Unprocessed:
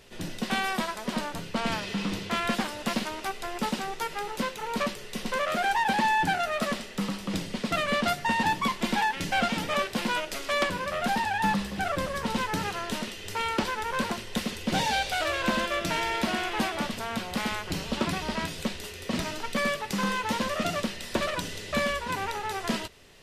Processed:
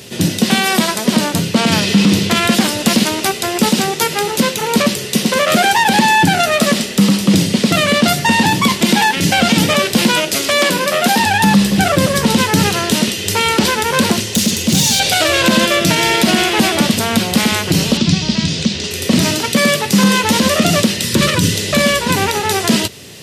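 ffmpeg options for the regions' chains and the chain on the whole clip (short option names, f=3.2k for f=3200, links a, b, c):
-filter_complex "[0:a]asettb=1/sr,asplit=3[a][b][c];[a]atrim=end=10.594[d];[b]atrim=start=10.59:end=11.19,asetpts=PTS-STARTPTS,afade=t=in:d=0.004:c=qsin,afade=t=out:st=0.596:d=0.004:c=qsin,highpass=260,equalizer=f=13k:t=o:w=0.42:g=3[e];[c]atrim=start=11.186[f];[d][e]acrossfade=d=0.004:c1=hsin:c2=qsin[g];[g][f]acrossfade=d=0.004:c1=qsin:c2=hsin,asettb=1/sr,asplit=3[h][i][j];[h]atrim=end=14.204[k];[i]atrim=start=14.2:end=15,asetpts=PTS-STARTPTS,afade=t=in:d=0.004:c=qsin,afade=t=out:st=0.796:d=0.004:c=qsin,equalizer=f=6.6k:w=3.1:g=5.5,acrossover=split=260|3000[l][m][n];[m]acompressor=threshold=-42dB:ratio=3:attack=3.2:release=140:knee=2.83:detection=peak[o];[l][o][n]amix=inputs=3:normalize=0,asoftclip=type=hard:threshold=-30dB[p];[j]atrim=start=14.996[q];[k][p]acrossfade=d=0.004:c1=hsin:c2=qsin[r];[r][q]acrossfade=d=0.004:c1=qsin:c2=hsin,asettb=1/sr,asplit=3[s][t][u];[s]atrim=end=17.974[v];[t]atrim=start=17.97:end=18.91,asetpts=PTS-STARTPTS,afade=t=in:d=0.004:c=qsin,afade=t=out:st=0.936:d=0.004:c=qsin,lowpass=f=6.2k:w=0.5412,lowpass=f=6.2k:w=1.3066,acrossover=split=220|3000[w][x][y];[x]acompressor=threshold=-42dB:ratio=6:attack=3.2:release=140:knee=2.83:detection=peak[z];[w][z][y]amix=inputs=3:normalize=0[aa];[u]atrim=start=18.906[ab];[v][aa]acrossfade=d=0.004:c1=hsin:c2=qsin[ac];[ac][ab]acrossfade=d=0.004:c1=qsin:c2=hsin,asettb=1/sr,asplit=3[ad][ae][af];[ad]atrim=end=21.034[ag];[ae]atrim=start=21.03:end=21.54,asetpts=PTS-STARTPTS,afade=t=in:d=0.004:c=qsin,afade=t=out:st=0.506:d=0.004:c=qsin,asuperstop=centerf=710:order=4:qfactor=2.3,equalizer=f=110:w=1:g=8[ah];[af]atrim=start=21.536[ai];[ag][ah]acrossfade=d=0.004:c1=hsin:c2=qsin[aj];[aj][ai]acrossfade=d=0.004:c1=qsin:c2=hsin,highpass=f=100:w=0.5412,highpass=f=100:w=1.3066,equalizer=f=1.1k:t=o:w=2.8:g=-12,alimiter=level_in=25.5dB:limit=-1dB:release=50:level=0:latency=1,volume=-1dB"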